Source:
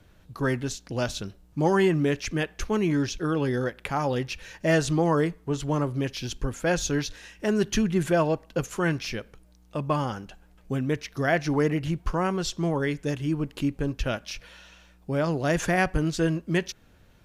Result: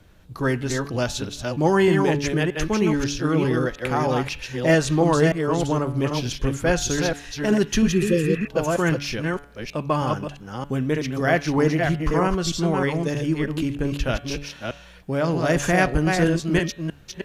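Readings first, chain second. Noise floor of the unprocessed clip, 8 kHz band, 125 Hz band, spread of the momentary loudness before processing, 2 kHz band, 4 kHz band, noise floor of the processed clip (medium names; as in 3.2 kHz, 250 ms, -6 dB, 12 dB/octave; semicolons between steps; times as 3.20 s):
-57 dBFS, +5.0 dB, +4.5 dB, 9 LU, +4.5 dB, +5.0 dB, -46 dBFS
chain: chunks repeated in reverse 313 ms, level -4 dB; de-hum 142.9 Hz, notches 29; spectral replace 7.95–8.45 s, 540–2700 Hz before; trim +3.5 dB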